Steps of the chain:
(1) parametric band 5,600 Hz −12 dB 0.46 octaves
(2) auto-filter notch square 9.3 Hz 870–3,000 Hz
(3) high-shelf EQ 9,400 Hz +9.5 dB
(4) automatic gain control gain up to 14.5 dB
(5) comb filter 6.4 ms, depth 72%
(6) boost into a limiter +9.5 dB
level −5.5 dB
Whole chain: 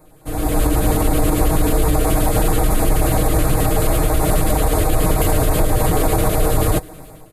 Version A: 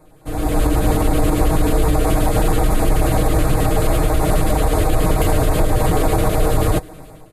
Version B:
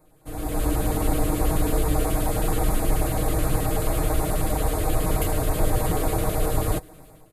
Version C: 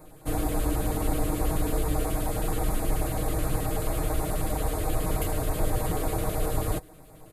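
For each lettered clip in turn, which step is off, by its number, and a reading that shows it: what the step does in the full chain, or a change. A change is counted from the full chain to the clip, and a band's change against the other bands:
3, 8 kHz band −4.5 dB
6, change in crest factor +4.5 dB
4, change in crest factor +4.5 dB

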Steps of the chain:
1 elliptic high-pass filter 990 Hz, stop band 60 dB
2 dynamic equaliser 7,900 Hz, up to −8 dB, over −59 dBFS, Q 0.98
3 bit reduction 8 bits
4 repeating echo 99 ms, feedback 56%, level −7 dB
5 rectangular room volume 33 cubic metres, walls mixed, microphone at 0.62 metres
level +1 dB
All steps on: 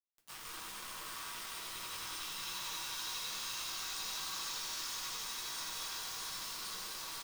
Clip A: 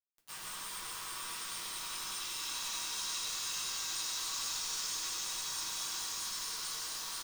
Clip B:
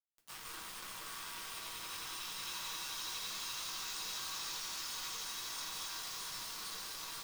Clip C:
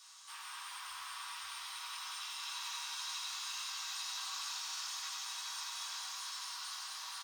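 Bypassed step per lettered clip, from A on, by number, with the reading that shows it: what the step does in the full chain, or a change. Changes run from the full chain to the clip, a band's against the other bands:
2, 8 kHz band +5.5 dB
4, echo-to-direct ratio 3.0 dB to 1.5 dB
3, distortion level −4 dB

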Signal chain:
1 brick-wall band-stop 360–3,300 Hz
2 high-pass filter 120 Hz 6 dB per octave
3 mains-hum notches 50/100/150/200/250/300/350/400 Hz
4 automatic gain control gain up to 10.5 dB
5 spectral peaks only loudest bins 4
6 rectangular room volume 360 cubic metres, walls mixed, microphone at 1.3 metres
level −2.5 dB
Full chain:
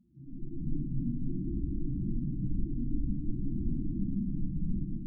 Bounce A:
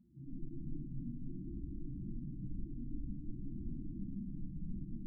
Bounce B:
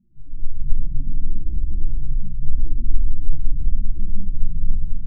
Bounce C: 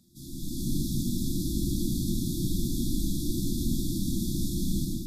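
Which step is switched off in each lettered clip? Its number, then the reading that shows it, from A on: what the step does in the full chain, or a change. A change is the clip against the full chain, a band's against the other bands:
4, change in momentary loudness spread −1 LU
2, change in crest factor −3.0 dB
5, change in momentary loudness spread −1 LU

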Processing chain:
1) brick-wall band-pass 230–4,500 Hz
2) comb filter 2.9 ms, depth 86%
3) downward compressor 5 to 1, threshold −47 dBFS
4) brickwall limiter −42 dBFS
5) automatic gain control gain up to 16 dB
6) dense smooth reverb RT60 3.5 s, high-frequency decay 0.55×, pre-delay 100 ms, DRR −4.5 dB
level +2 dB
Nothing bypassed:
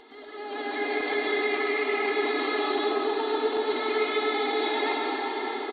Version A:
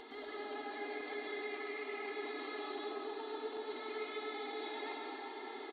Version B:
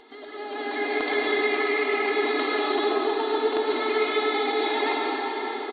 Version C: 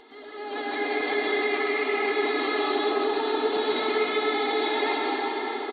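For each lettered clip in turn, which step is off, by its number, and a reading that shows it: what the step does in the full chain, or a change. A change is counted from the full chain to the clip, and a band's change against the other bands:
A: 5, change in momentary loudness spread −2 LU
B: 4, average gain reduction 1.5 dB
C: 3, average gain reduction 11.5 dB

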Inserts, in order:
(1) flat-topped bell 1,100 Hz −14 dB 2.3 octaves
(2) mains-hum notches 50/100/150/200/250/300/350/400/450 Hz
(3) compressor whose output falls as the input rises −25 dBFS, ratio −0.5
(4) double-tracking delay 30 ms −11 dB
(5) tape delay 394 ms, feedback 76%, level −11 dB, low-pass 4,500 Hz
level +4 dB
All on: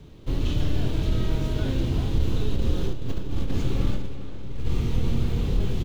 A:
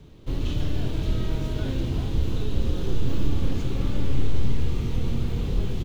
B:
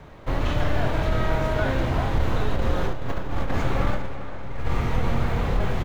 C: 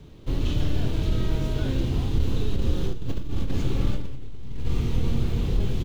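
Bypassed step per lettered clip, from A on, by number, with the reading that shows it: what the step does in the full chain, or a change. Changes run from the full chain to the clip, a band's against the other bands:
3, change in momentary loudness spread −6 LU
1, 1 kHz band +13.0 dB
5, echo-to-direct ratio −18.0 dB to none audible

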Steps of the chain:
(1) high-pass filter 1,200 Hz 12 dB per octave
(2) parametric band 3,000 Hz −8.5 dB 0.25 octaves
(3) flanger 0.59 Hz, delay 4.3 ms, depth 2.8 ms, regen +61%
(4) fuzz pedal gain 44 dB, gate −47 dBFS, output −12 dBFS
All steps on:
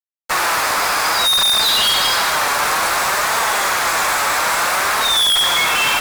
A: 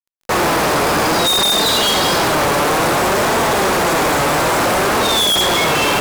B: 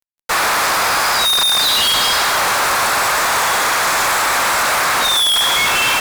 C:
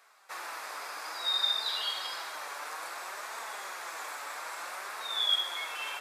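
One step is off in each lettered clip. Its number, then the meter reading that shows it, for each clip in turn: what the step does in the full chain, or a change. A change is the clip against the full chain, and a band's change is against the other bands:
1, 250 Hz band +15.0 dB
3, change in momentary loudness spread −1 LU
4, distortion level −3 dB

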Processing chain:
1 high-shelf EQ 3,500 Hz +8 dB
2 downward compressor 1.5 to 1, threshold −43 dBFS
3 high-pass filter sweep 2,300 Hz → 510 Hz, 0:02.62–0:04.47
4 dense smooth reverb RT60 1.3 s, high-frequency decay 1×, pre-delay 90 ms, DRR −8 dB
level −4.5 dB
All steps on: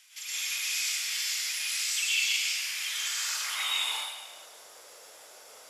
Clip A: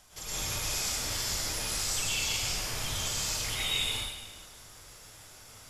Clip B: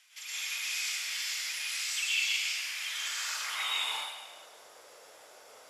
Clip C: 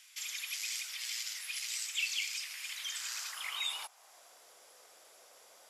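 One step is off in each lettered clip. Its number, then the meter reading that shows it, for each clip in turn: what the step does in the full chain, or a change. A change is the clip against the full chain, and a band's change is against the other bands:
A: 3, 500 Hz band +13.0 dB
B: 1, 8 kHz band −4.5 dB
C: 4, change in momentary loudness spread −5 LU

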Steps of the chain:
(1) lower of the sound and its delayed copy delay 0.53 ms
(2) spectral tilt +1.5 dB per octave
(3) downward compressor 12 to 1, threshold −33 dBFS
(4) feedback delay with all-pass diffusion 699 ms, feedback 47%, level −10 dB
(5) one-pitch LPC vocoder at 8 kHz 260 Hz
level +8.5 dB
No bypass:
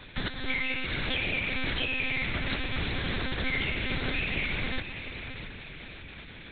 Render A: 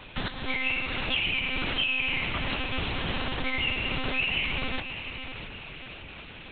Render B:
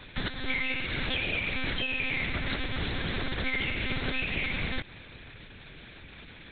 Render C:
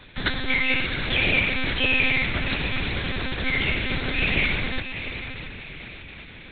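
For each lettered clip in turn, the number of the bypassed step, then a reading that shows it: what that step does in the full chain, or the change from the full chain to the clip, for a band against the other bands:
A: 1, 4 kHz band +3.5 dB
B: 4, change in momentary loudness spread +4 LU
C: 3, average gain reduction 4.0 dB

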